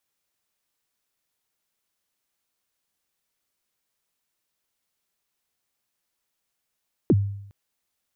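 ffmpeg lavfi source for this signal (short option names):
-f lavfi -i "aevalsrc='0.251*pow(10,-3*t/0.74)*sin(2*PI*(430*0.042/log(100/430)*(exp(log(100/430)*min(t,0.042)/0.042)-1)+100*max(t-0.042,0)))':d=0.41:s=44100"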